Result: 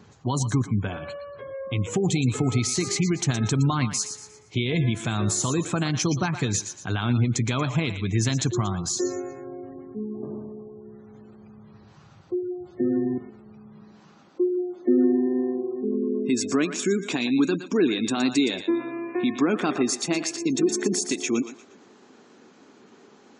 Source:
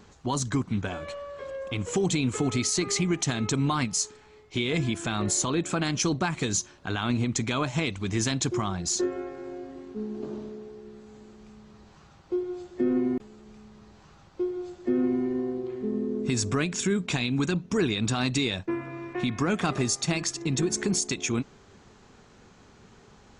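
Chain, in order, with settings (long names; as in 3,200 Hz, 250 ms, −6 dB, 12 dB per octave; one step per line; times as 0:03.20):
feedback echo with a high-pass in the loop 117 ms, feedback 37%, high-pass 720 Hz, level −8.5 dB
gate on every frequency bin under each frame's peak −30 dB strong
high-pass filter sweep 110 Hz → 280 Hz, 0:13.46–0:14.40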